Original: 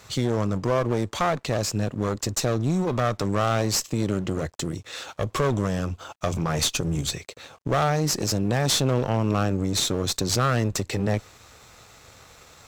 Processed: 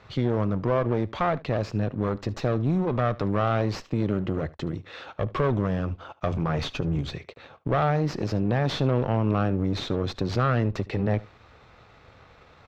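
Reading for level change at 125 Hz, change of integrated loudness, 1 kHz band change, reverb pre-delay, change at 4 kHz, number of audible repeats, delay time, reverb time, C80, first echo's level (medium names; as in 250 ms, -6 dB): 0.0 dB, -1.5 dB, -1.5 dB, no reverb, -9.5 dB, 1, 74 ms, no reverb, no reverb, -21.0 dB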